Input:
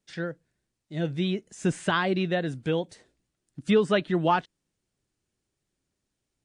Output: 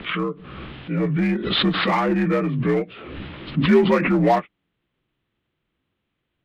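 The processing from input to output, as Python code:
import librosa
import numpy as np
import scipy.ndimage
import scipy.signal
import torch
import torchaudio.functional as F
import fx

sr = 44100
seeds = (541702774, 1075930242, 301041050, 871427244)

p1 = fx.partial_stretch(x, sr, pct=83)
p2 = scipy.signal.sosfilt(scipy.signal.butter(8, 3400.0, 'lowpass', fs=sr, output='sos'), p1)
p3 = 10.0 ** (-28.5 / 20.0) * (np.abs((p2 / 10.0 ** (-28.5 / 20.0) + 3.0) % 4.0 - 2.0) - 1.0)
p4 = p2 + F.gain(torch.from_numpy(p3), -10.0).numpy()
p5 = fx.pre_swell(p4, sr, db_per_s=36.0)
y = F.gain(torch.from_numpy(p5), 6.0).numpy()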